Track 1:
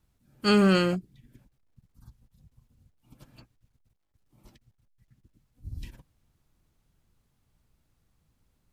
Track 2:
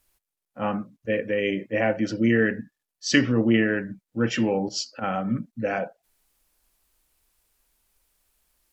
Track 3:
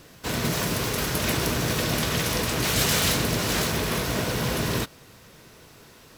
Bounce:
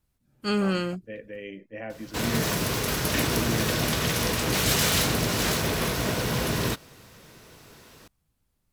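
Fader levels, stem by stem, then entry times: -4.5 dB, -14.0 dB, -0.5 dB; 0.00 s, 0.00 s, 1.90 s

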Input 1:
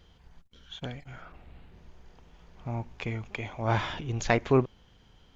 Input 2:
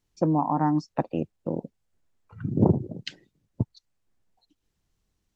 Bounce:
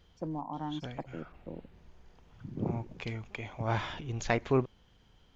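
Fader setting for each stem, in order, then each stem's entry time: -4.5 dB, -14.0 dB; 0.00 s, 0.00 s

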